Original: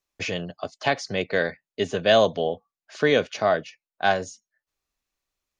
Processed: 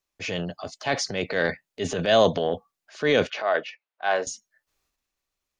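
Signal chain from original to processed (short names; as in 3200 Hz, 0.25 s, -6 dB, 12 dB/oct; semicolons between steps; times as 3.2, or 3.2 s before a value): transient shaper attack -6 dB, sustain +8 dB; 3.3–4.27 BPF 500–3000 Hz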